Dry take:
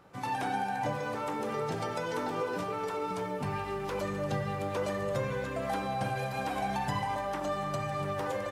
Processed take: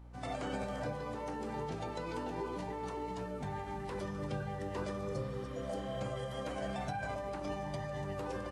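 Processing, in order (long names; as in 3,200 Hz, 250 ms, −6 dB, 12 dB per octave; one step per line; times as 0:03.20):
mains hum 60 Hz, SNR 13 dB
formants moved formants −4 semitones
healed spectral selection 0:05.04–0:05.94, 900–4,200 Hz both
level −6 dB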